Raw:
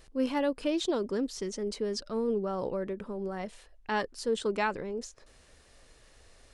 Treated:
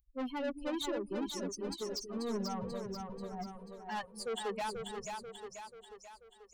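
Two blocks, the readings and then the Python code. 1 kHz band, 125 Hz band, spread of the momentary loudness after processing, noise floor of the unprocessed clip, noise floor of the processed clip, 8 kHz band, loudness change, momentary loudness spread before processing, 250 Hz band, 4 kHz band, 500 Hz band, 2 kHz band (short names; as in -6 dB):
-4.5 dB, -3.5 dB, 13 LU, -60 dBFS, -62 dBFS, -2.0 dB, -7.0 dB, 9 LU, -6.5 dB, -3.0 dB, -8.0 dB, -8.0 dB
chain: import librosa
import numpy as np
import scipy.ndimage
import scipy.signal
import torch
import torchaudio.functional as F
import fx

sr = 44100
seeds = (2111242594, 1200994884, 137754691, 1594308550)

y = fx.bin_expand(x, sr, power=3.0)
y = fx.dynamic_eq(y, sr, hz=1600.0, q=1.3, threshold_db=-52.0, ratio=4.0, max_db=-5)
y = 10.0 ** (-38.5 / 20.0) * np.tanh(y / 10.0 ** (-38.5 / 20.0))
y = fx.echo_split(y, sr, split_hz=370.0, low_ms=231, high_ms=487, feedback_pct=52, wet_db=-4.5)
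y = y * librosa.db_to_amplitude(4.5)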